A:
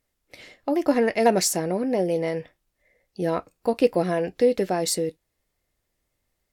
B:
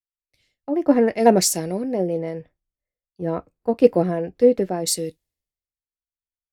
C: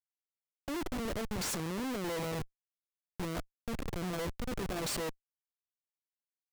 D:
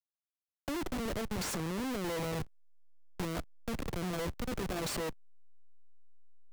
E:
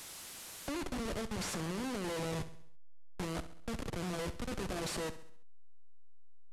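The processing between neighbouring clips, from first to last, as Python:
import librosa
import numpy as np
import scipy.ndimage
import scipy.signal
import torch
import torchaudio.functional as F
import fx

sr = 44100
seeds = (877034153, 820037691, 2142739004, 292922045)

y1 = fx.tilt_shelf(x, sr, db=4.5, hz=710.0)
y1 = fx.band_widen(y1, sr, depth_pct=100)
y1 = y1 * 10.0 ** (-1.0 / 20.0)
y2 = fx.over_compress(y1, sr, threshold_db=-26.0, ratio=-1.0)
y2 = fx.schmitt(y2, sr, flips_db=-31.0)
y2 = y2 * 10.0 ** (-7.5 / 20.0)
y3 = fx.delta_hold(y2, sr, step_db=-51.5)
y3 = fx.band_squash(y3, sr, depth_pct=40)
y4 = fx.delta_mod(y3, sr, bps=64000, step_db=-38.5)
y4 = fx.echo_feedback(y4, sr, ms=67, feedback_pct=50, wet_db=-14)
y4 = y4 * 10.0 ** (-2.5 / 20.0)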